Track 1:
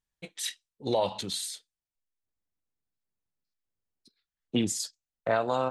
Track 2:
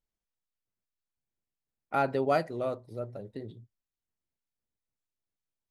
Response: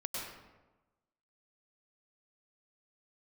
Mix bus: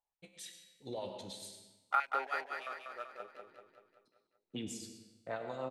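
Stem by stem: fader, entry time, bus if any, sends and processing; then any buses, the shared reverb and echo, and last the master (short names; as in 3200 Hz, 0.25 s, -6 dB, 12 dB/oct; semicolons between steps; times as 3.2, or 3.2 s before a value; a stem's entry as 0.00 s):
-7.0 dB, 0.00 s, send -4.5 dB, no echo send, rotary speaker horn 6.7 Hz; resonator 65 Hz, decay 1 s, harmonics all, mix 70%
+2.5 dB, 0.00 s, no send, echo send -4.5 dB, Wiener smoothing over 25 samples; compressor 6:1, threshold -34 dBFS, peak gain reduction 12 dB; stepped high-pass 7.5 Hz 840–3000 Hz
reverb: on, RT60 1.1 s, pre-delay 93 ms
echo: feedback echo 0.192 s, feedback 53%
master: dry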